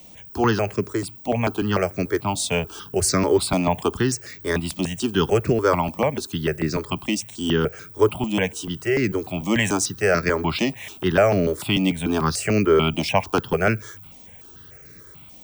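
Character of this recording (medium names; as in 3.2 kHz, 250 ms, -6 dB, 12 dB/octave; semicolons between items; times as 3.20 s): notches that jump at a steady rate 6.8 Hz 410–3100 Hz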